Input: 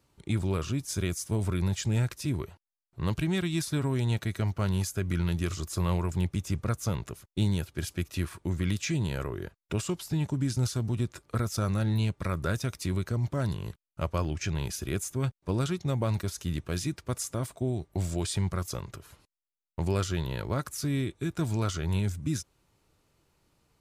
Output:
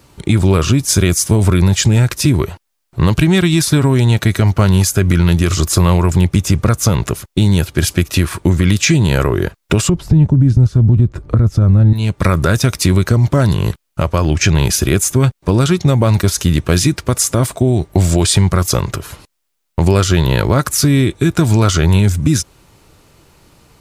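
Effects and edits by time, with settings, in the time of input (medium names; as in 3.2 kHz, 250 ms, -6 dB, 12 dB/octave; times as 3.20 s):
9.89–11.93 s: tilt EQ -4.5 dB/octave
whole clip: compression, threshold -29 dBFS; loudness maximiser +22.5 dB; trim -1 dB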